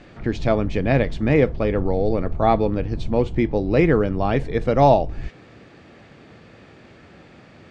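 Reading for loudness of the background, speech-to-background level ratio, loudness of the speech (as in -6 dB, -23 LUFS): -34.0 LUFS, 13.5 dB, -20.5 LUFS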